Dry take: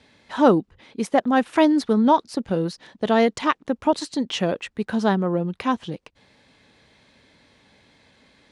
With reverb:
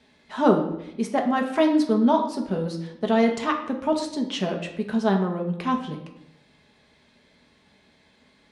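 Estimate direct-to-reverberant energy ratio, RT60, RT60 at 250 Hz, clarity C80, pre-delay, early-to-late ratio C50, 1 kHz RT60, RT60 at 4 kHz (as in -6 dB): 2.0 dB, 0.80 s, 1.0 s, 10.5 dB, 4 ms, 8.0 dB, 0.75 s, 0.60 s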